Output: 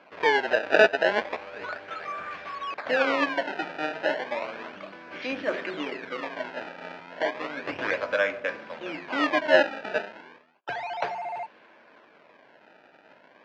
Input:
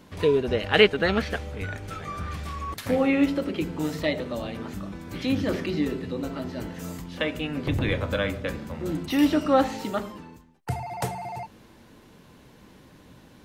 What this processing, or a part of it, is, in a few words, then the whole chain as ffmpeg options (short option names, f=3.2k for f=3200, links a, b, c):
circuit-bent sampling toy: -af "acrusher=samples=23:mix=1:aa=0.000001:lfo=1:lforange=36.8:lforate=0.33,highpass=460,equalizer=f=620:t=q:w=4:g=7,equalizer=f=1k:t=q:w=4:g=3,equalizer=f=1.6k:t=q:w=4:g=8,equalizer=f=2.4k:t=q:w=4:g=6,equalizer=f=3.7k:t=q:w=4:g=-3,lowpass=f=4.2k:w=0.5412,lowpass=f=4.2k:w=1.3066,volume=-1dB"